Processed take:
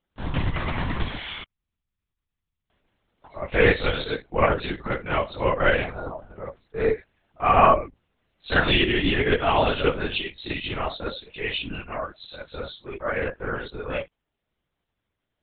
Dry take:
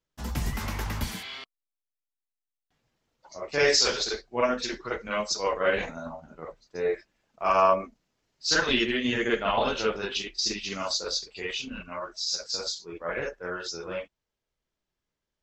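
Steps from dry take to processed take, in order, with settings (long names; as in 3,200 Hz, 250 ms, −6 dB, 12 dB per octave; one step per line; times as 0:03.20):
linear-prediction vocoder at 8 kHz whisper
level +5 dB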